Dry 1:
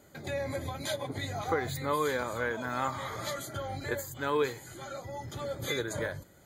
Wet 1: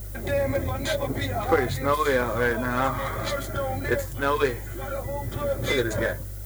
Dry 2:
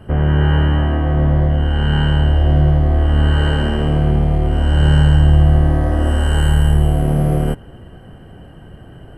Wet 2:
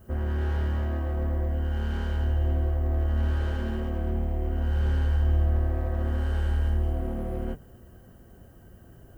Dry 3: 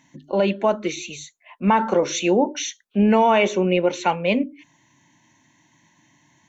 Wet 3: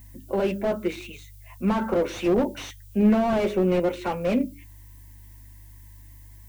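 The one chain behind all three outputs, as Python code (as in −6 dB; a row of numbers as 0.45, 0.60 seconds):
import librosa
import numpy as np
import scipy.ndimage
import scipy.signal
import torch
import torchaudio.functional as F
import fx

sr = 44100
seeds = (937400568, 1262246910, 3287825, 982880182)

y = fx.wiener(x, sr, points=9)
y = fx.peak_eq(y, sr, hz=880.0, db=-4.5, octaves=0.32)
y = fx.hum_notches(y, sr, base_hz=50, count=4)
y = fx.dmg_buzz(y, sr, base_hz=50.0, harmonics=3, level_db=-46.0, tilt_db=-4, odd_only=False)
y = fx.notch_comb(y, sr, f0_hz=150.0)
y = fx.dmg_noise_colour(y, sr, seeds[0], colour='violet', level_db=-55.0)
y = fx.slew_limit(y, sr, full_power_hz=58.0)
y = y * 10.0 ** (-26 / 20.0) / np.sqrt(np.mean(np.square(y)))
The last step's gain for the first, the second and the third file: +10.5, −11.0, −0.5 decibels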